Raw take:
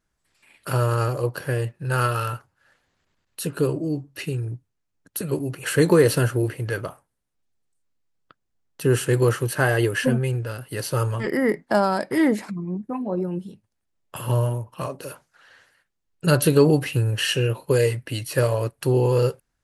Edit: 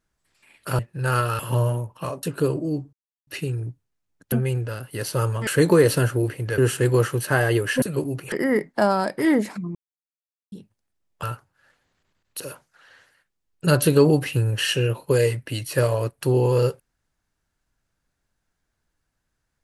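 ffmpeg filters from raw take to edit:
-filter_complex "[0:a]asplit=14[s0][s1][s2][s3][s4][s5][s6][s7][s8][s9][s10][s11][s12][s13];[s0]atrim=end=0.792[s14];[s1]atrim=start=1.648:end=2.252[s15];[s2]atrim=start=14.158:end=15.002[s16];[s3]atrim=start=3.418:end=4.12,asetpts=PTS-STARTPTS,afade=t=out:st=0.698:d=0.004:c=hsin,apad=pad_dur=0.34[s17];[s4]atrim=start=4.12:end=5.172,asetpts=PTS-STARTPTS,afade=t=in:d=0.004:c=hsin[s18];[s5]atrim=start=10.098:end=11.252[s19];[s6]atrim=start=5.668:end=6.782[s20];[s7]atrim=start=8.858:end=10.102[s21];[s8]atrim=start=5.168:end=5.672[s22];[s9]atrim=start=11.248:end=12.68,asetpts=PTS-STARTPTS,afade=t=out:st=1.428:d=0.004:c=hsin[s23];[s10]atrim=start=12.68:end=13.45,asetpts=PTS-STARTPTS,volume=0[s24];[s11]atrim=start=13.45:end=14.162,asetpts=PTS-STARTPTS,afade=t=in:d=0.004:c=hsin[s25];[s12]atrim=start=2.248:end=3.422[s26];[s13]atrim=start=14.998[s27];[s14][s15]acrossfade=d=0.004:c1=hsin:c2=hsin[s28];[s28][s16]acrossfade=d=0.004:c1=hsin:c2=hsin[s29];[s17][s18]concat=n=2:v=0:a=1[s30];[s29][s30]acrossfade=d=0.004:c1=hsin:c2=hsin[s31];[s31][s19]acrossfade=d=0.004:c1=hsin:c2=hsin[s32];[s32][s20]acrossfade=d=0.004:c1=hsin:c2=hsin[s33];[s33][s21]acrossfade=d=0.004:c1=hsin:c2=hsin[s34];[s34][s22]acrossfade=d=0.004:c1=hsin:c2=hsin[s35];[s23][s24][s25]concat=n=3:v=0:a=1[s36];[s35][s36]acrossfade=d=0.004:c1=hsin:c2=hsin[s37];[s37][s26]acrossfade=d=0.004:c1=hsin:c2=hsin[s38];[s38][s27]acrossfade=d=0.004:c1=hsin:c2=hsin"

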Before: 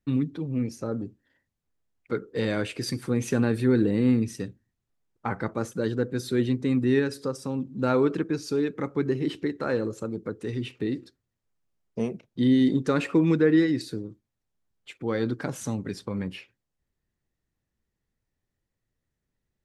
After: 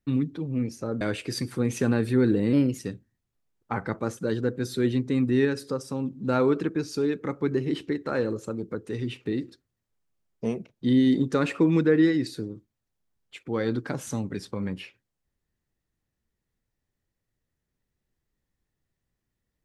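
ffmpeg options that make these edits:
-filter_complex "[0:a]asplit=4[s0][s1][s2][s3];[s0]atrim=end=1.012[s4];[s1]atrim=start=2.518:end=4.044[s5];[s2]atrim=start=4.04:end=4.33,asetpts=PTS-STARTPTS,asetrate=49833,aresample=44100[s6];[s3]atrim=start=4.326[s7];[s4][s5]acrossfade=d=0.004:c1=hsin:c2=hsin[s8];[s8][s6]acrossfade=d=0.004:c1=hsin:c2=hsin[s9];[s9][s7]acrossfade=d=0.004:c1=hsin:c2=hsin"

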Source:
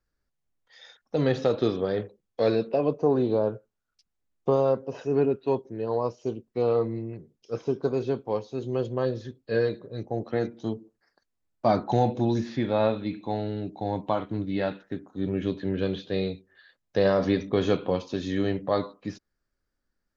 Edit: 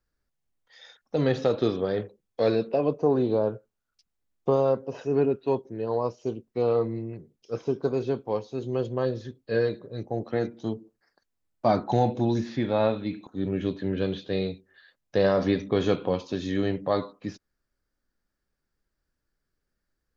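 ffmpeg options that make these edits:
-filter_complex "[0:a]asplit=2[s0][s1];[s0]atrim=end=13.272[s2];[s1]atrim=start=15.078[s3];[s2][s3]acrossfade=d=0.004:c1=hsin:c2=hsin"

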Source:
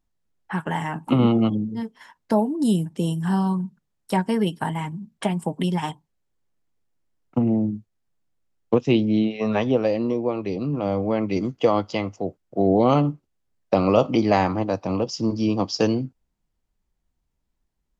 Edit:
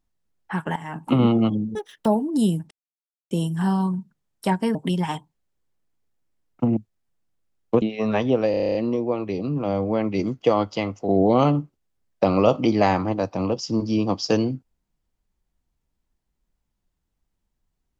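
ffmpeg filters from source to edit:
-filter_complex "[0:a]asplit=17[s0][s1][s2][s3][s4][s5][s6][s7][s8][s9][s10][s11][s12][s13][s14][s15][s16];[s0]atrim=end=0.76,asetpts=PTS-STARTPTS,afade=t=out:st=0.756:d=0.004:c=hsin:silence=0.177828[s17];[s1]atrim=start=0.76:end=1.754,asetpts=PTS-STARTPTS,afade=t=in:d=0.28:silence=0.177828[s18];[s2]atrim=start=1.75:end=2.32,asetpts=PTS-STARTPTS,asetrate=81585,aresample=44100[s19];[s3]atrim=start=2.316:end=2.97,asetpts=PTS-STARTPTS,afade=t=out:st=0.65:d=0.004:c=hsin,apad=pad_dur=0.6[s20];[s4]atrim=start=2.97:end=4.412,asetpts=PTS-STARTPTS,afade=t=in:d=0.004:c=hsin[s21];[s5]atrim=start=5.488:end=7.512[s22];[s6]atrim=start=7.758:end=8.812[s23];[s7]atrim=start=9.228:end=9.952[s24];[s8]atrim=start=9.918:end=9.952[s25];[s9]atrim=start=9.918:end=9.952[s26];[s10]atrim=start=9.918:end=9.952[s27];[s11]atrim=start=9.918:end=9.952[s28];[s12]atrim=start=9.918:end=9.952[s29];[s13]atrim=start=9.918:end=9.952[s30];[s14]atrim=start=9.918:end=9.952[s31];[s15]atrim=start=9.918:end=12.262[s32];[s16]atrim=start=12.588[s33];[s17][s18]concat=n=2:v=0:a=1[s34];[s34][s19]acrossfade=d=0.004:c1=hsin:c2=hsin[s35];[s20][s21]concat=n=2:v=0:a=1[s36];[s35][s36]acrossfade=d=0.004:c1=hsin:c2=hsin[s37];[s37][s22]acrossfade=d=0.004:c1=hsin:c2=hsin[s38];[s38][s23]acrossfade=d=0.004:c1=hsin:c2=hsin[s39];[s39][s24]acrossfade=d=0.004:c1=hsin:c2=hsin[s40];[s40][s25]acrossfade=d=0.004:c1=hsin:c2=hsin[s41];[s41][s26]acrossfade=d=0.004:c1=hsin:c2=hsin[s42];[s42][s27]acrossfade=d=0.004:c1=hsin:c2=hsin[s43];[s43][s28]acrossfade=d=0.004:c1=hsin:c2=hsin[s44];[s44][s29]acrossfade=d=0.004:c1=hsin:c2=hsin[s45];[s45][s30]acrossfade=d=0.004:c1=hsin:c2=hsin[s46];[s46][s31]acrossfade=d=0.004:c1=hsin:c2=hsin[s47];[s47][s32]acrossfade=d=0.004:c1=hsin:c2=hsin[s48];[s48][s33]acrossfade=d=0.004:c1=hsin:c2=hsin"

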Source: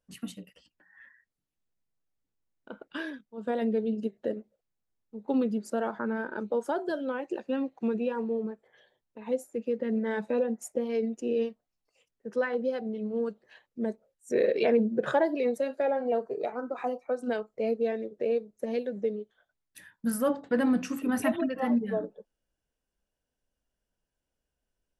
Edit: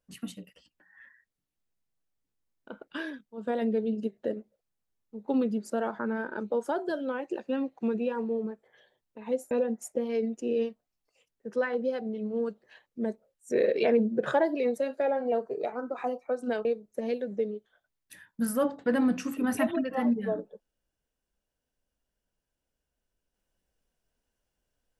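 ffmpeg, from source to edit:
-filter_complex "[0:a]asplit=3[s0][s1][s2];[s0]atrim=end=9.512[s3];[s1]atrim=start=10.308:end=17.452[s4];[s2]atrim=start=18.298[s5];[s3][s4]acrossfade=d=0.004:c1=hsin:c2=hsin[s6];[s6][s5]acrossfade=d=0.004:c1=hsin:c2=hsin"

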